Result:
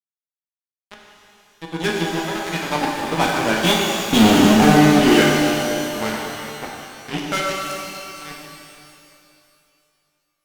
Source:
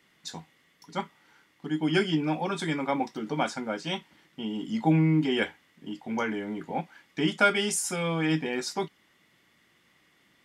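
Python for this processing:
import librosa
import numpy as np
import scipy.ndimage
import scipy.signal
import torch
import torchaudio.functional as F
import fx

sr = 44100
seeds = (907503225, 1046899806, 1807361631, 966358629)

y = fx.doppler_pass(x, sr, speed_mps=20, closest_m=1.7, pass_at_s=4.23)
y = fx.fuzz(y, sr, gain_db=49.0, gate_db=-54.0)
y = fx.rev_shimmer(y, sr, seeds[0], rt60_s=2.6, semitones=12, shimmer_db=-8, drr_db=-2.0)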